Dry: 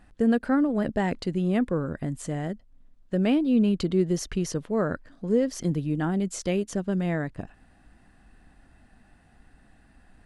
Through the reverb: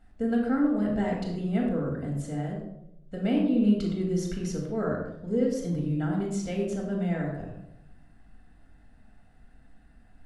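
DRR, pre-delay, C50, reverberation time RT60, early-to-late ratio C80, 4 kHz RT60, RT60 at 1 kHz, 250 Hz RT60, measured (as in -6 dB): -2.5 dB, 4 ms, 2.5 dB, 0.80 s, 5.0 dB, 0.50 s, 0.70 s, 0.95 s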